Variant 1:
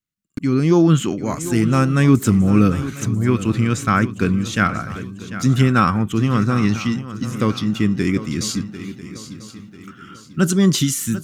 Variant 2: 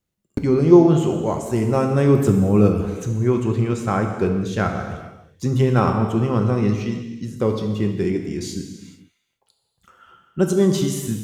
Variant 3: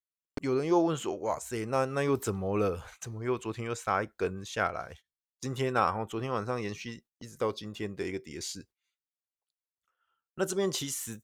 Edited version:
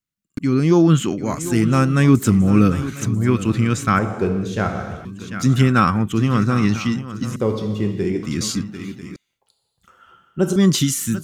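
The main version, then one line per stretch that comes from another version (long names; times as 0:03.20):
1
0:03.99–0:05.05: punch in from 2
0:07.36–0:08.23: punch in from 2
0:09.16–0:10.56: punch in from 2
not used: 3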